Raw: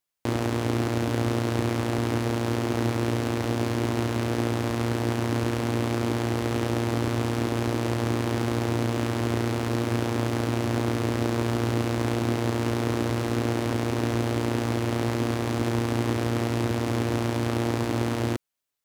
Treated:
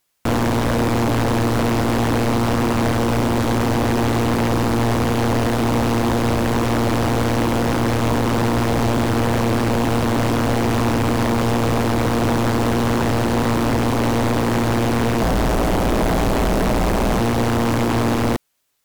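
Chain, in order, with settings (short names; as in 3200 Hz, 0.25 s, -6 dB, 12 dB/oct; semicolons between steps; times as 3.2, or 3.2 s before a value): 15.21–17.19 octaver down 2 oct, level +3 dB; sine folder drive 16 dB, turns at -9.5 dBFS; gain -5 dB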